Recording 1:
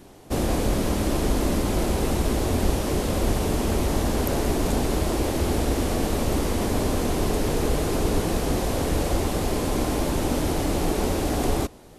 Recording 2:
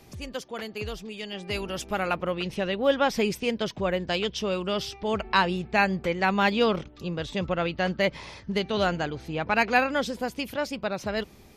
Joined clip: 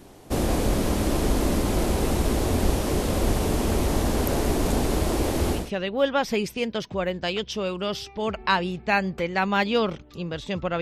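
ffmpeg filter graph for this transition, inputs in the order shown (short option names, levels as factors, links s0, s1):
-filter_complex "[0:a]apad=whole_dur=10.81,atrim=end=10.81,atrim=end=5.71,asetpts=PTS-STARTPTS[s0];[1:a]atrim=start=2.35:end=7.67,asetpts=PTS-STARTPTS[s1];[s0][s1]acrossfade=d=0.22:c1=tri:c2=tri"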